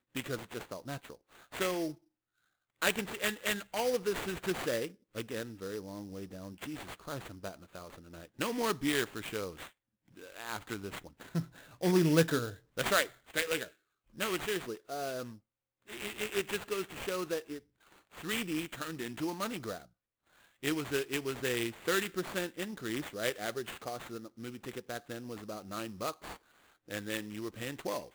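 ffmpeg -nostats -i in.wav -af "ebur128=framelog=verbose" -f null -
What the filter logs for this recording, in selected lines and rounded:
Integrated loudness:
  I:         -35.8 LUFS
  Threshold: -46.4 LUFS
Loudness range:
  LRA:         9.1 LU
  Threshold: -56.3 LUFS
  LRA low:   -41.2 LUFS
  LRA high:  -32.1 LUFS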